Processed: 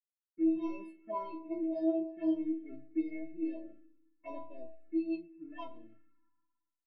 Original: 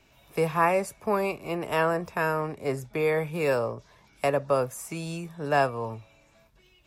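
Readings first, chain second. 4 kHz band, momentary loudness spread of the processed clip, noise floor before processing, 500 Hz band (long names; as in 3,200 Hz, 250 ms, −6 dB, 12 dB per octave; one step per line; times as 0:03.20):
below −20 dB, 17 LU, −61 dBFS, −14.5 dB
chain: leveller curve on the samples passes 3
stiff-string resonator 320 Hz, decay 0.64 s, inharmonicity 0.008
low-pass that shuts in the quiet parts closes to 1,300 Hz, open at −30 dBFS
dynamic equaliser 930 Hz, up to +4 dB, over −44 dBFS, Q 0.73
ambience of single reflections 38 ms −15.5 dB, 52 ms −15 dB
dead-zone distortion −58.5 dBFS
rotating-speaker cabinet horn 0.65 Hz, later 6.7 Hz, at 0:04.45
spring reverb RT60 2.2 s, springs 52/59 ms, chirp 30 ms, DRR 12.5 dB
phaser swept by the level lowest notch 570 Hz, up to 1,600 Hz, full sweep at −34.5 dBFS
parametric band 240 Hz +13 dB 1.2 octaves
every bin expanded away from the loudest bin 1.5 to 1
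level +1.5 dB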